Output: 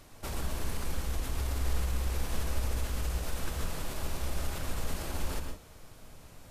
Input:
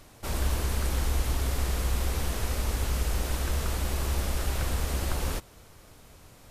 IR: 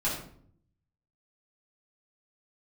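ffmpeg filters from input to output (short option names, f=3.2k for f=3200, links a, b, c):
-filter_complex "[0:a]alimiter=level_in=1dB:limit=-24dB:level=0:latency=1:release=54,volume=-1dB,asplit=2[a][b];[1:a]atrim=start_sample=2205,atrim=end_sample=3087,adelay=110[c];[b][c]afir=irnorm=-1:irlink=0,volume=-11dB[d];[a][d]amix=inputs=2:normalize=0,volume=-2.5dB"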